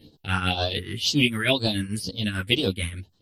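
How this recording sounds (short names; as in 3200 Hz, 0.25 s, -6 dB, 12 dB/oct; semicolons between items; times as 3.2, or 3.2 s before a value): phasing stages 4, 2 Hz, lowest notch 630–2100 Hz; tremolo triangle 6.8 Hz, depth 75%; a shimmering, thickened sound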